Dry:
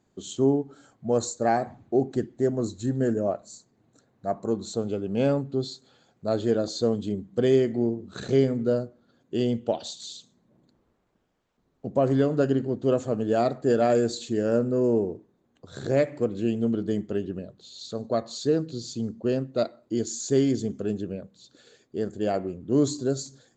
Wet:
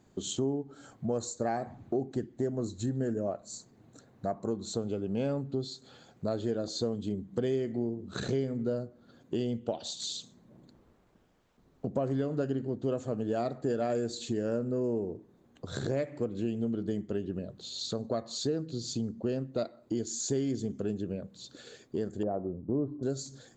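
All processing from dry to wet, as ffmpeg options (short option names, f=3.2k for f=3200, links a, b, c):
-filter_complex "[0:a]asettb=1/sr,asplit=3[a][b][c];[a]atrim=end=22.234[d];[b]atrim=start=22.23:end=23.03,asetpts=PTS-STARTPTS,afade=t=in:d=0.004:c=qsin,afade=t=out:st=0.796:d=0.004:c=qsin,lowpass=f=1.1k:w=0.5412,lowpass=f=1.1k:w=1.3066,agate=range=-33dB:threshold=-38dB:ratio=3:release=100:detection=peak[e];[c]atrim=start=23.026[f];[d][e]acrossfade=d=0.004:c1=hsin:c2=qsin[g];[g][f]acrossfade=d=0.004:c1=qsin:c2=hsin,lowshelf=f=200:g=3,acompressor=threshold=-38dB:ratio=3,volume=5dB"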